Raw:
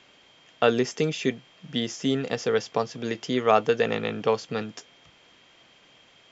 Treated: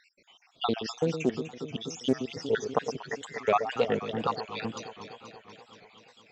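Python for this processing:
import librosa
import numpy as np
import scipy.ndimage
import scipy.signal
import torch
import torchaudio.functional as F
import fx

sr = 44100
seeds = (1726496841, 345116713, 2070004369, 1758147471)

p1 = fx.spec_dropout(x, sr, seeds[0], share_pct=74)
p2 = fx.rider(p1, sr, range_db=5, speed_s=0.5)
p3 = p1 + (p2 * librosa.db_to_amplitude(1.0))
p4 = fx.dmg_crackle(p3, sr, seeds[1], per_s=41.0, level_db=-54.0, at=(2.13, 2.68), fade=0.02)
p5 = p4 + fx.echo_alternate(p4, sr, ms=120, hz=920.0, feedback_pct=83, wet_db=-9, dry=0)
p6 = fx.wow_flutter(p5, sr, seeds[2], rate_hz=2.1, depth_cents=94.0)
p7 = fx.doppler_dist(p6, sr, depth_ms=0.2)
y = p7 * librosa.db_to_amplitude(-6.5)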